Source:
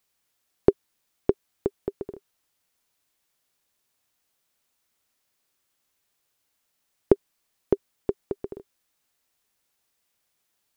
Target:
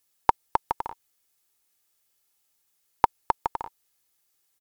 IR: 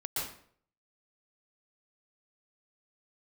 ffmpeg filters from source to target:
-af "highshelf=f=2.3k:g=9.5,aecho=1:1:5.5:0.34,asetrate=103194,aresample=44100"

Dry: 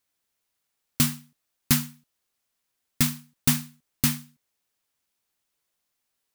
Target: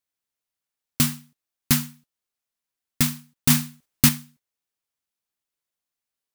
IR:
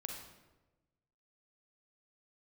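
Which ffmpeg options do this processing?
-filter_complex "[0:a]asettb=1/sr,asplit=3[a][b][c];[a]atrim=end=3.504[d];[b]atrim=start=3.5:end=4.09,asetpts=PTS-STARTPTS,afade=t=in:d=0.004:c=qsin,afade=t=out:st=0.586:d=0.004:c=qsin,acontrast=49[e];[c]atrim=start=4.086[f];[d][e]acrossfade=d=0.004:c1=hsin:c2=qsin[g];[g][f]acrossfade=d=0.004:c1=qsin:c2=hsin,agate=range=-10dB:threshold=-52dB:ratio=16:detection=peak,volume=1.5dB"

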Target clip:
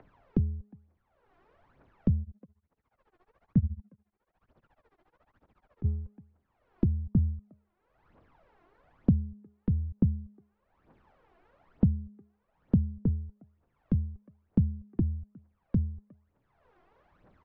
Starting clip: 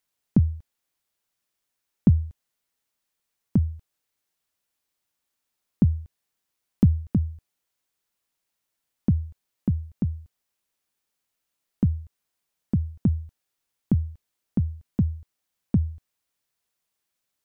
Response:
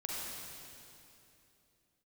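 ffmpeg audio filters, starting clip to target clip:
-filter_complex "[0:a]acompressor=mode=upward:threshold=-33dB:ratio=2.5,aemphasis=mode=reproduction:type=75fm,asplit=2[a][b];[b]adelay=360,highpass=300,lowpass=3.4k,asoftclip=type=hard:threshold=-15dB,volume=-24dB[c];[a][c]amix=inputs=2:normalize=0,aphaser=in_gain=1:out_gain=1:delay=3:decay=0.69:speed=1.1:type=triangular,lowpass=1.1k,bandreject=f=207.3:t=h:w=4,bandreject=f=414.6:t=h:w=4,bandreject=f=621.9:t=h:w=4,bandreject=f=829.2:t=h:w=4,bandreject=f=1.0365k:t=h:w=4,bandreject=f=1.2438k:t=h:w=4,asettb=1/sr,asplit=3[d][e][f];[d]atrim=end=2.224[g];[e]atrim=start=2.22:end=5.86,asetpts=PTS-STARTPTS,afade=t=in:d=0.004:c=qsin,afade=t=out:st=3.636:d=0.004:c=qsin,tremolo=f=14:d=0.95[h];[f]atrim=start=5.856[i];[g][h]acrossfade=d=0.004:c1=hsin:c2=qsin[j];[j][i]acrossfade=d=0.004:c1=qsin:c2=hsin,acrossover=split=190|390[k][l][m];[k]acompressor=threshold=-26dB:ratio=4[n];[l]acompressor=threshold=-28dB:ratio=4[o];[m]acompressor=threshold=-56dB:ratio=4[p];[n][o][p]amix=inputs=3:normalize=0"

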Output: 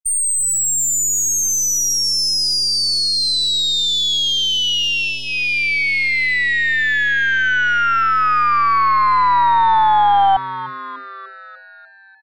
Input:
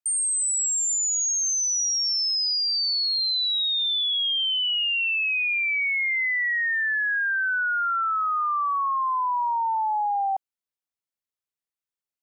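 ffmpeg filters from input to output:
-filter_complex "[0:a]acrossover=split=1000|3600[a][b][c];[a]acontrast=78[d];[d][b][c]amix=inputs=3:normalize=0,afftfilt=real='re*gte(hypot(re,im),0.2)':imag='im*gte(hypot(re,im),0.2)':win_size=1024:overlap=0.75,aeval=exprs='0.168*(cos(1*acos(clip(val(0)/0.168,-1,1)))-cos(1*PI/2))+0.00119*(cos(3*acos(clip(val(0)/0.168,-1,1)))-cos(3*PI/2))+0.0168*(cos(4*acos(clip(val(0)/0.168,-1,1)))-cos(4*PI/2))':c=same,bandreject=f=2.6k:w=14,asplit=8[e][f][g][h][i][j][k][l];[f]adelay=297,afreqshift=130,volume=-15dB[m];[g]adelay=594,afreqshift=260,volume=-19dB[n];[h]adelay=891,afreqshift=390,volume=-23dB[o];[i]adelay=1188,afreqshift=520,volume=-27dB[p];[j]adelay=1485,afreqshift=650,volume=-31.1dB[q];[k]adelay=1782,afreqshift=780,volume=-35.1dB[r];[l]adelay=2079,afreqshift=910,volume=-39.1dB[s];[e][m][n][o][p][q][r][s]amix=inputs=8:normalize=0,volume=6.5dB"

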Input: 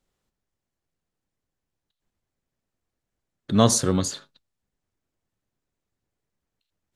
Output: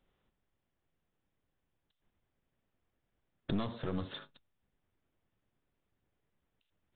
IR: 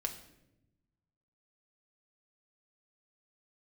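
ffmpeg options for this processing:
-af "acompressor=threshold=-30dB:ratio=6,aresample=8000,aeval=exprs='clip(val(0),-1,0.0112)':c=same,aresample=44100,volume=1.5dB"

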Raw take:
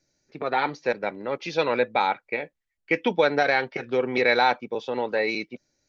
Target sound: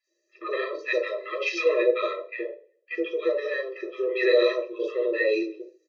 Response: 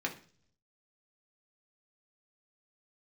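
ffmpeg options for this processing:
-filter_complex "[0:a]asettb=1/sr,asplit=3[a][b][c];[a]atrim=end=0.884[d];[b]atrim=start=0.88:end=1.59,asetpts=PTS-STARTPTS,afade=t=in:d=0.004:c=qsin,afade=t=out:st=0.706:d=0.004:c=qsin,tiltshelf=f=750:g=-10[e];[c]atrim=start=1.586[f];[d][e]acrossfade=d=0.004:c1=hsin:c2=qsin[g];[g][f]acrossfade=d=0.004:c1=qsin:c2=hsin,asettb=1/sr,asplit=3[h][i][j];[h]atrim=end=2.204[k];[i]atrim=start=2.2:end=4.09,asetpts=PTS-STARTPTS,afade=t=in:d=0.004:c=qsin,afade=t=out:st=1.886:d=0.004:c=qsin,acompressor=threshold=-33dB:ratio=1.5[l];[j]atrim=start=4.086[m];[k][l]acrossfade=d=0.004:c1=hsin:c2=qsin[n];[n][m]acrossfade=d=0.004:c1=qsin:c2=hsin,acrossover=split=1000|4300[o][p][q];[q]adelay=40[r];[o]adelay=70[s];[s][p][r]amix=inputs=3:normalize=0[t];[1:a]atrim=start_sample=2205,asetrate=52920,aresample=44100[u];[t][u]afir=irnorm=-1:irlink=0,afftfilt=real='re*eq(mod(floor(b*sr/1024/340),2),1)':imag='im*eq(mod(floor(b*sr/1024/340),2),1)':win_size=1024:overlap=0.75"

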